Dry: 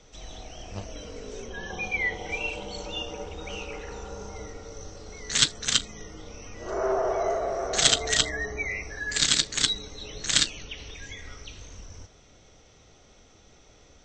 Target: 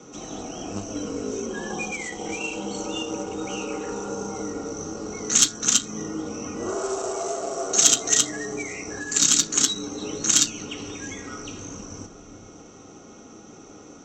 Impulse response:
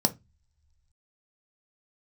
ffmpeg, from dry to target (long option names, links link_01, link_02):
-filter_complex "[0:a]highpass=41,aresample=16000,acrusher=bits=4:mode=log:mix=0:aa=0.000001,aresample=44100,acontrast=56,bandreject=frequency=110.5:width_type=h:width=4,bandreject=frequency=221:width_type=h:width=4,bandreject=frequency=331.5:width_type=h:width=4,bandreject=frequency=442:width_type=h:width=4,bandreject=frequency=552.5:width_type=h:width=4,bandreject=frequency=663:width_type=h:width=4,bandreject=frequency=773.5:width_type=h:width=4,bandreject=frequency=884:width_type=h:width=4,bandreject=frequency=994.5:width_type=h:width=4,bandreject=frequency=1105:width_type=h:width=4,bandreject=frequency=1215.5:width_type=h:width=4,bandreject=frequency=1326:width_type=h:width=4,bandreject=frequency=1436.5:width_type=h:width=4,bandreject=frequency=1547:width_type=h:width=4,bandreject=frequency=1657.5:width_type=h:width=4,bandreject=frequency=1768:width_type=h:width=4,acrossover=split=2800[link_01][link_02];[link_01]acompressor=threshold=-33dB:ratio=6[link_03];[link_03][link_02]amix=inputs=2:normalize=0[link_04];[1:a]atrim=start_sample=2205,asetrate=61740,aresample=44100[link_05];[link_04][link_05]afir=irnorm=-1:irlink=0,volume=-5.5dB"